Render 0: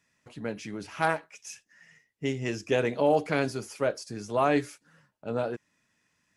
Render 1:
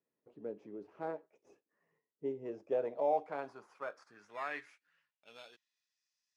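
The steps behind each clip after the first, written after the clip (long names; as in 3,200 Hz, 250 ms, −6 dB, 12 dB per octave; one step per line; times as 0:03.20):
in parallel at −9.5 dB: decimation without filtering 15×
on the sum: band-pass filter sweep 420 Hz → 5,000 Hz, 0:02.27–0:06.03
level −6.5 dB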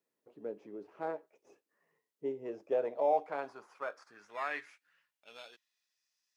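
low-shelf EQ 210 Hz −9.5 dB
level +3.5 dB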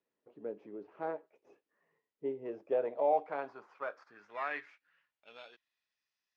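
low-pass filter 3,300 Hz 12 dB per octave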